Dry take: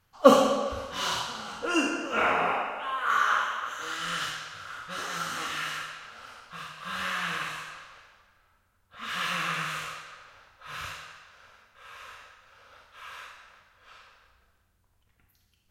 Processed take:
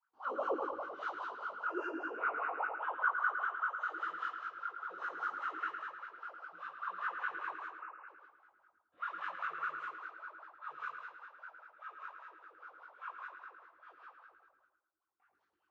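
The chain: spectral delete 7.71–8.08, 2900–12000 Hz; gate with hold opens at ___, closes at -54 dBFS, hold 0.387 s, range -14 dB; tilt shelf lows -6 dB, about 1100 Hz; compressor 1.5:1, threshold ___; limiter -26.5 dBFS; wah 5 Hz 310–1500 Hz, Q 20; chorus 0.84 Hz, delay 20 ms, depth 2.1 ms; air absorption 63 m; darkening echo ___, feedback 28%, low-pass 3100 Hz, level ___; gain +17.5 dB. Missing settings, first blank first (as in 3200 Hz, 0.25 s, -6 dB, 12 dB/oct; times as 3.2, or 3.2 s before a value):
-52 dBFS, -48 dBFS, 0.109 s, -6 dB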